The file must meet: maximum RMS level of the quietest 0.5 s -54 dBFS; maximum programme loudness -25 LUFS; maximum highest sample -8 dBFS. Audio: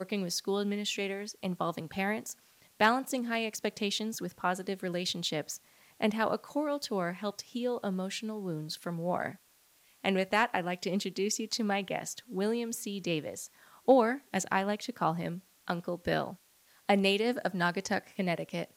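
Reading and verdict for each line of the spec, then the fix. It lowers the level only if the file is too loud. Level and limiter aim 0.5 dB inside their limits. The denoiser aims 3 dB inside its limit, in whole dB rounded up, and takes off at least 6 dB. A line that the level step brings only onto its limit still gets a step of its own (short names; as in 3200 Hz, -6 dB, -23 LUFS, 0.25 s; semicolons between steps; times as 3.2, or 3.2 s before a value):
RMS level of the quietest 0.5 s -65 dBFS: OK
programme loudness -32.5 LUFS: OK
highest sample -10.0 dBFS: OK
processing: none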